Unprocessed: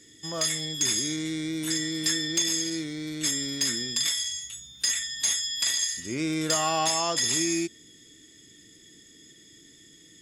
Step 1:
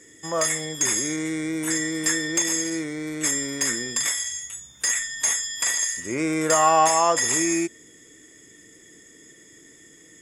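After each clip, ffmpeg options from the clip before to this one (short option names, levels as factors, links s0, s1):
-af "equalizer=f=500:t=o:w=1:g=8,equalizer=f=1000:t=o:w=1:g=9,equalizer=f=2000:t=o:w=1:g=7,equalizer=f=4000:t=o:w=1:g=-11,equalizer=f=8000:t=o:w=1:g=8"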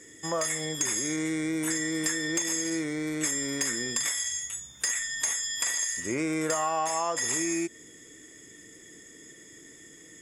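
-af "acompressor=threshold=0.0501:ratio=5"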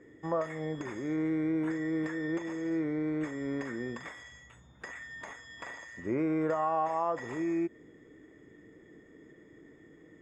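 -af "lowpass=1200"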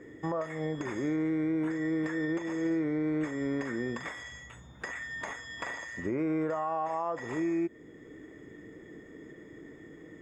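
-af "alimiter=level_in=2:limit=0.0631:level=0:latency=1:release=495,volume=0.501,volume=2.11"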